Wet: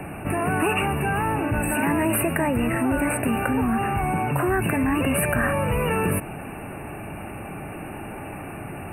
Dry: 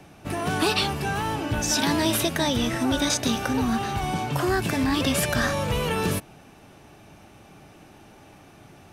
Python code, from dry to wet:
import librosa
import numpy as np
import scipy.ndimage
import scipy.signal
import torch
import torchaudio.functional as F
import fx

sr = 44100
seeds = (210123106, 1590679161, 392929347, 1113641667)

y = fx.brickwall_bandstop(x, sr, low_hz=2900.0, high_hz=8000.0)
y = fx.env_flatten(y, sr, amount_pct=50)